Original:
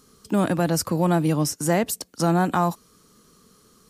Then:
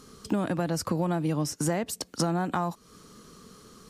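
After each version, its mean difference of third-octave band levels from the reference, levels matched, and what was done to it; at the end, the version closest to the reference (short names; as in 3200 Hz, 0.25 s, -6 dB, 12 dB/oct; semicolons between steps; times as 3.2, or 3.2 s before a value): 5.5 dB: high shelf 10000 Hz -11.5 dB; compressor 6:1, threshold -31 dBFS, peak gain reduction 14.5 dB; gain +6 dB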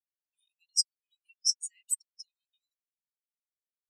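21.0 dB: steep high-pass 2500 Hz 36 dB/oct; spectral expander 4:1; gain +2 dB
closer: first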